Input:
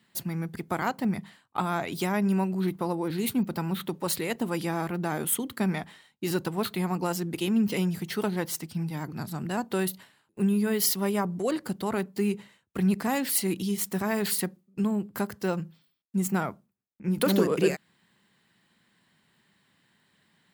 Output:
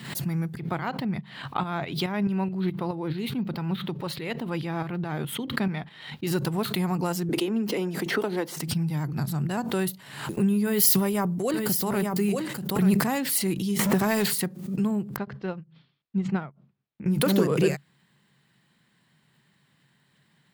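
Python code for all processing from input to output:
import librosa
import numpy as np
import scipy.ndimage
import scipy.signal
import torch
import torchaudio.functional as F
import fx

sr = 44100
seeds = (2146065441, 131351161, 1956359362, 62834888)

y = fx.chain(x, sr, fx.high_shelf_res(hz=5200.0, db=-10.5, q=1.5),
    fx.tremolo_shape(shape='saw_up', hz=4.7, depth_pct=55), at=(0.57, 6.27))
y = fx.chain(y, sr, fx.highpass(hz=290.0, slope=24),
    fx.tilt_eq(slope=-2.5),
    fx.band_squash(depth_pct=100), at=(7.29, 8.57))
y = fx.chain(y, sr, fx.high_shelf(hz=11000.0, db=9.5),
    fx.echo_single(ms=886, db=-8.0),
    fx.sustainer(db_per_s=46.0), at=(10.65, 13.04))
y = fx.chain(y, sr, fx.zero_step(step_db=-37.0),
    fx.peak_eq(hz=670.0, db=3.0, octaves=2.3),
    fx.band_squash(depth_pct=100), at=(13.79, 14.33))
y = fx.chain(y, sr, fx.lowpass(hz=4000.0, slope=24),
    fx.upward_expand(threshold_db=-45.0, expansion=2.5), at=(15.16, 17.06))
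y = fx.peak_eq(y, sr, hz=140.0, db=12.0, octaves=0.34)
y = fx.pre_swell(y, sr, db_per_s=72.0)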